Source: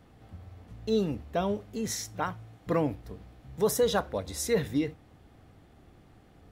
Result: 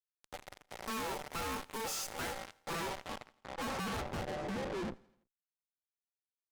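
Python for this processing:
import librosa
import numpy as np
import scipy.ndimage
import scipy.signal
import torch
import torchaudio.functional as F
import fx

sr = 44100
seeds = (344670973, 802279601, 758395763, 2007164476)

p1 = fx.highpass(x, sr, hz=62.0, slope=6)
p2 = fx.high_shelf(p1, sr, hz=5100.0, db=-4.0)
p3 = fx.rider(p2, sr, range_db=4, speed_s=2.0)
p4 = p2 + (p3 * librosa.db_to_amplitude(2.0))
p5 = p4 * np.sin(2.0 * np.pi * 670.0 * np.arange(len(p4)) / sr)
p6 = fx.fuzz(p5, sr, gain_db=38.0, gate_db=-38.0)
p7 = fx.filter_sweep_lowpass(p6, sr, from_hz=12000.0, to_hz=390.0, start_s=2.17, end_s=4.73, q=0.8)
p8 = fx.tube_stage(p7, sr, drive_db=39.0, bias=0.5)
p9 = p8 + fx.echo_feedback(p8, sr, ms=83, feedback_pct=55, wet_db=-24, dry=0)
y = p9 * librosa.db_to_amplitude(2.0)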